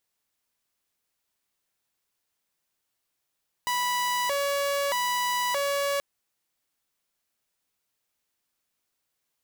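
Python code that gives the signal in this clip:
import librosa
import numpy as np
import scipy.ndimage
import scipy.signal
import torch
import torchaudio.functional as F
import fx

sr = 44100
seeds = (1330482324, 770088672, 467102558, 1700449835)

y = fx.siren(sr, length_s=2.33, kind='hi-lo', low_hz=564.0, high_hz=984.0, per_s=0.8, wave='saw', level_db=-22.0)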